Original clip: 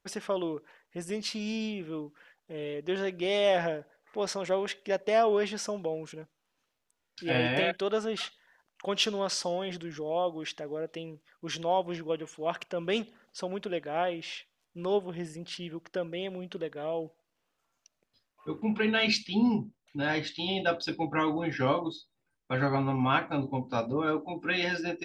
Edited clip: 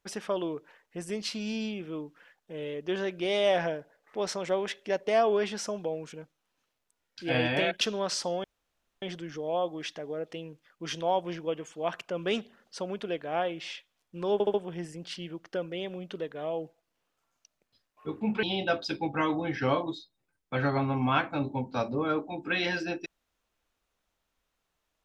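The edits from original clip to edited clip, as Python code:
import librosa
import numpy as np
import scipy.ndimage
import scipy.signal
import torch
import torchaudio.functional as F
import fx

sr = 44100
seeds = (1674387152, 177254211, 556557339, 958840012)

y = fx.edit(x, sr, fx.cut(start_s=7.81, length_s=1.2),
    fx.insert_room_tone(at_s=9.64, length_s=0.58),
    fx.stutter(start_s=14.95, slice_s=0.07, count=4),
    fx.cut(start_s=18.84, length_s=1.57), tone=tone)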